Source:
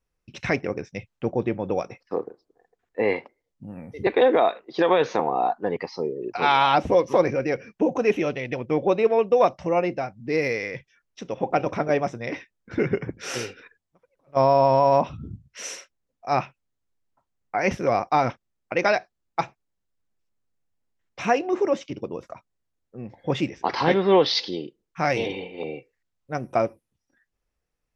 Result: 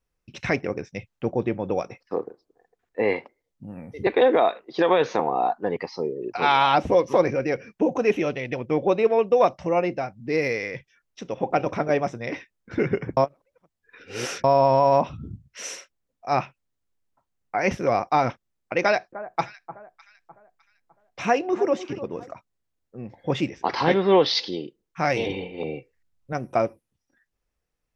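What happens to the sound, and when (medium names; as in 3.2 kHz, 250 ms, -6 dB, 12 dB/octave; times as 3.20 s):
13.17–14.44 s: reverse
18.82–22.31 s: echo whose repeats swap between lows and highs 303 ms, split 1.4 kHz, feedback 54%, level -13.5 dB
25.27–26.33 s: bass shelf 170 Hz +10 dB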